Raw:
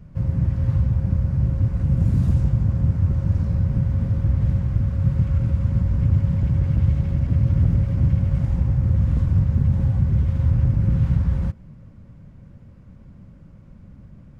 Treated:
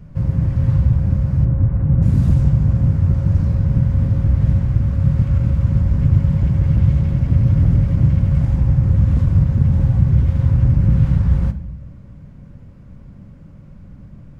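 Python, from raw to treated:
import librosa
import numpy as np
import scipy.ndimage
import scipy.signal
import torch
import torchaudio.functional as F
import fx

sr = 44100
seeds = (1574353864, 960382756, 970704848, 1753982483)

y = fx.lowpass(x, sr, hz=1700.0, slope=12, at=(1.44, 2.01), fade=0.02)
y = fx.room_shoebox(y, sr, seeds[0], volume_m3=230.0, walls='mixed', distance_m=0.32)
y = y * 10.0 ** (4.0 / 20.0)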